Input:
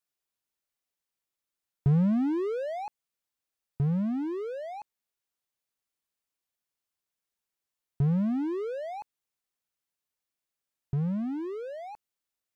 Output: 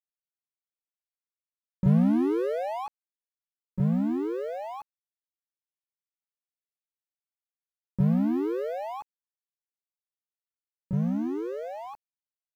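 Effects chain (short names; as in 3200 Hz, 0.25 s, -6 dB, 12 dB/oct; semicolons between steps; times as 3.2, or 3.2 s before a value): harmoniser +5 st -2 dB; requantised 10-bit, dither none; mismatched tape noise reduction decoder only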